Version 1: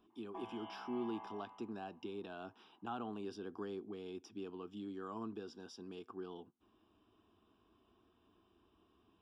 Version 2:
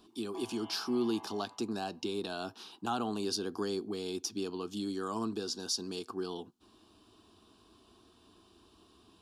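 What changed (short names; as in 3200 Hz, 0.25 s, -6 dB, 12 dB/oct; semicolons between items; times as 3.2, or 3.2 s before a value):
speech +9.0 dB; master: remove polynomial smoothing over 25 samples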